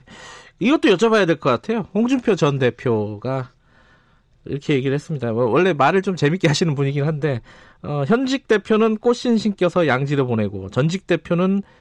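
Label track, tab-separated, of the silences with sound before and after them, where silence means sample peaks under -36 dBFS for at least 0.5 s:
3.470000	4.460000	silence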